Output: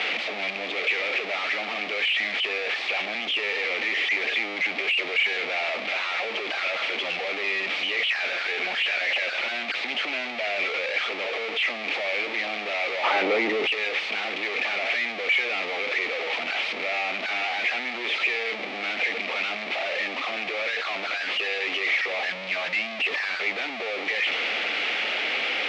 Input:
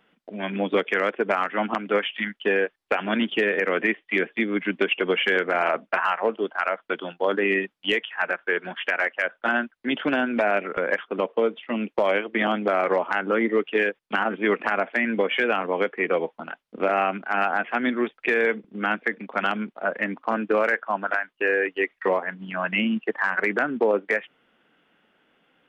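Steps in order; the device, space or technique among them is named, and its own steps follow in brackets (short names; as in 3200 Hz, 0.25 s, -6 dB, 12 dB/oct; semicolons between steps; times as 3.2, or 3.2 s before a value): home computer beeper (infinite clipping; speaker cabinet 630–4000 Hz, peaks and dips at 1000 Hz -10 dB, 1500 Hz -9 dB, 2300 Hz +9 dB); 13.03–13.65 bell 660 Hz -> 180 Hz +12.5 dB 3 oct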